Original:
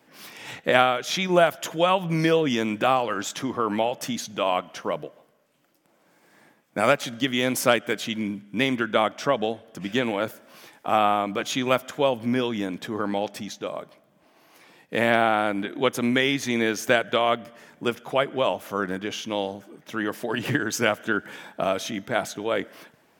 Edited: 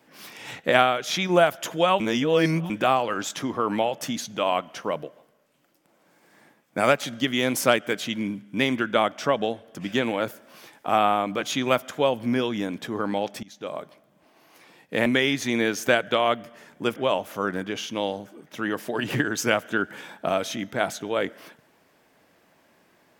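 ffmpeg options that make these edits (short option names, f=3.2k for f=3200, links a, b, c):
-filter_complex "[0:a]asplit=6[a][b][c][d][e][f];[a]atrim=end=2.002[g];[b]atrim=start=1.998:end=2.702,asetpts=PTS-STARTPTS,areverse[h];[c]atrim=start=2.698:end=13.43,asetpts=PTS-STARTPTS,afade=t=out:st=10.728:d=0.004:c=hsin:silence=0.0794328[i];[d]atrim=start=13.43:end=15.062,asetpts=PTS-STARTPTS,afade=t=in:d=0.31:silence=0.0794328[j];[e]atrim=start=16.068:end=17.972[k];[f]atrim=start=18.308[l];[g][h]acrossfade=d=0.004:c1=hsin:c2=hsin[m];[i][j]concat=n=2:v=0:a=1[n];[m][n]acrossfade=d=0.004:c1=hsin:c2=hsin[o];[o][k]acrossfade=d=0.004:c1=hsin:c2=hsin[p];[p][l]acrossfade=d=0.004:c1=hsin:c2=hsin"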